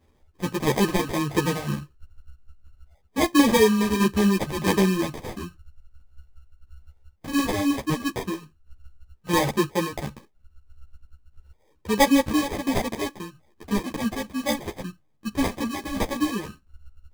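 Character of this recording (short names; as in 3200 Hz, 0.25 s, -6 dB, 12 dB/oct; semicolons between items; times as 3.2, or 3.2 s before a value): phasing stages 4, 0.12 Hz, lowest notch 450–1100 Hz; tremolo saw down 1.5 Hz, depth 55%; aliases and images of a low sample rate 1400 Hz, jitter 0%; a shimmering, thickened sound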